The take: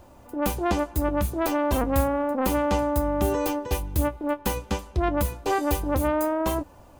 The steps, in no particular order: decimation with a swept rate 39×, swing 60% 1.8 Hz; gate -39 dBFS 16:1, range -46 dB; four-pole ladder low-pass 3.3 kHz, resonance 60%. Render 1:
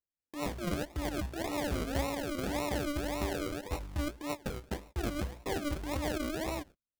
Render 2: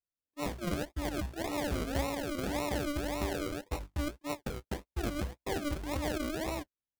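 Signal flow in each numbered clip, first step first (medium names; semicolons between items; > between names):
gate > four-pole ladder low-pass > decimation with a swept rate; four-pole ladder low-pass > gate > decimation with a swept rate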